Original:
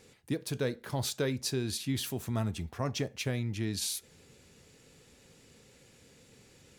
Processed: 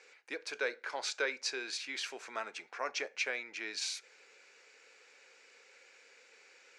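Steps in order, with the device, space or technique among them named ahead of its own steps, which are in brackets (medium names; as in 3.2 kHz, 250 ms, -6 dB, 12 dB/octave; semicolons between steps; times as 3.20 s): phone speaker on a table (cabinet simulation 480–6600 Hz, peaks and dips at 650 Hz -4 dB, 1.5 kHz +8 dB, 2.3 kHz +9 dB, 3.4 kHz -5 dB)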